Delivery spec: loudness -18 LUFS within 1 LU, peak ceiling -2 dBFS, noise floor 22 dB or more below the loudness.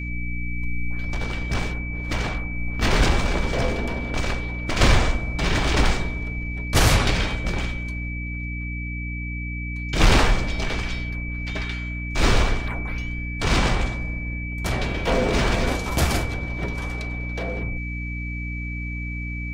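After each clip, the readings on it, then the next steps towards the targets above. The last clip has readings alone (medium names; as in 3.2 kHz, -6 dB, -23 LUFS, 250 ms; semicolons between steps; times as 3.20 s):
hum 60 Hz; highest harmonic 300 Hz; hum level -27 dBFS; steady tone 2.3 kHz; tone level -33 dBFS; loudness -25.0 LUFS; peak level -6.0 dBFS; loudness target -18.0 LUFS
-> de-hum 60 Hz, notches 5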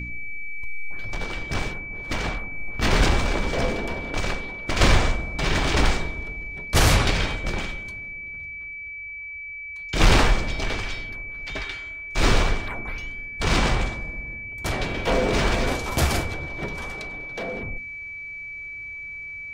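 hum not found; steady tone 2.3 kHz; tone level -33 dBFS
-> band-stop 2.3 kHz, Q 30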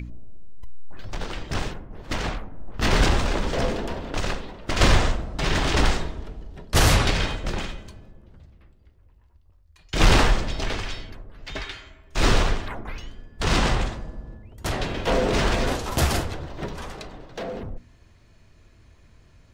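steady tone not found; loudness -25.0 LUFS; peak level -7.0 dBFS; loudness target -18.0 LUFS
-> trim +7 dB; peak limiter -2 dBFS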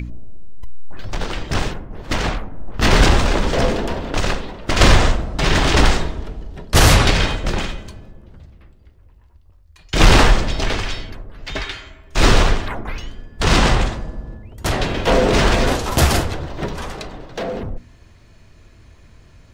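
loudness -18.5 LUFS; peak level -2.0 dBFS; noise floor -48 dBFS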